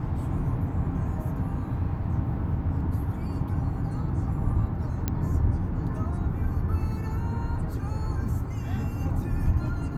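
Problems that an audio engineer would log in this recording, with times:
0:05.08: click −12 dBFS

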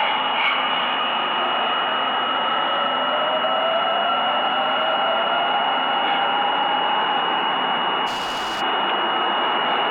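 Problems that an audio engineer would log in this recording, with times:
whistle 2,900 Hz −26 dBFS
0:08.06–0:08.62: clipping −22.5 dBFS

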